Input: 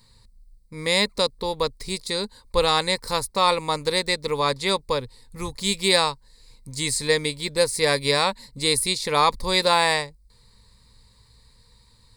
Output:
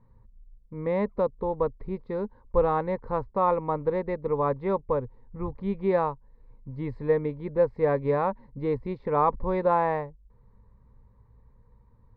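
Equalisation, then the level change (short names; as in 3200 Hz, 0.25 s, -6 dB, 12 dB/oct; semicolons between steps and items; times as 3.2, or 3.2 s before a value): Bessel low-pass 890 Hz, order 4; 0.0 dB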